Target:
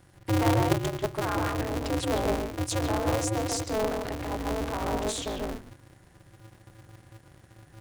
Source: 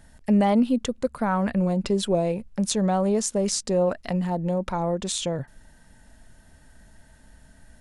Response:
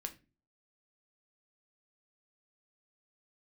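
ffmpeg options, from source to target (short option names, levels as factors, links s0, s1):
-filter_complex "[0:a]bandreject=f=60:t=h:w=6,bandreject=f=120:t=h:w=6,bandreject=f=180:t=h:w=6,bandreject=f=240:t=h:w=6,asplit=2[s0][s1];[1:a]atrim=start_sample=2205,lowpass=2700,adelay=140[s2];[s1][s2]afir=irnorm=-1:irlink=0,volume=1.12[s3];[s0][s3]amix=inputs=2:normalize=0,aeval=exprs='val(0)*sgn(sin(2*PI*110*n/s))':c=same,volume=0.501"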